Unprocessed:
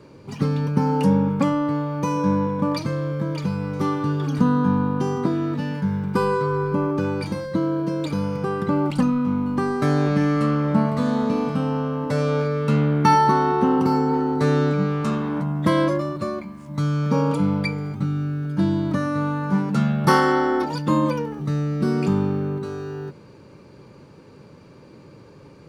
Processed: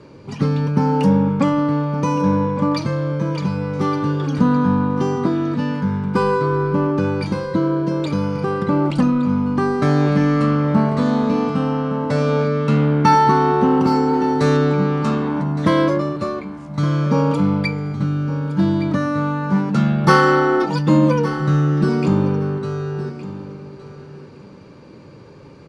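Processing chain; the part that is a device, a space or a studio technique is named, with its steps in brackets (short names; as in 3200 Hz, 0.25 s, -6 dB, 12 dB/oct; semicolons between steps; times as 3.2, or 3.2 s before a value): LPF 7200 Hz 12 dB/oct; 13.87–14.57 high shelf 5000 Hz +8.5 dB; 20.08–21.89 comb 6.1 ms, depth 67%; parallel distortion (in parallel at -9 dB: hard clip -16 dBFS, distortion -13 dB); on the sum: feedback echo 1.165 s, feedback 16%, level -14 dB; gain +1 dB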